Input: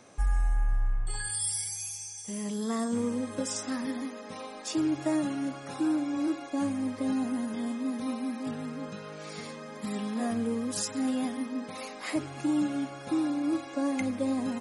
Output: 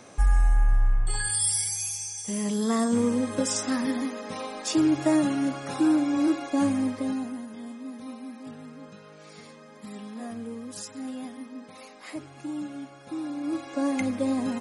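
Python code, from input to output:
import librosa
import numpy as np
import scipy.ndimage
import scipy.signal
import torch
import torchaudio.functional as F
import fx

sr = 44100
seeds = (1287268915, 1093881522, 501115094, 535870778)

y = fx.gain(x, sr, db=fx.line((6.78, 6.0), (7.47, -6.5), (13.09, -6.5), (13.82, 3.0)))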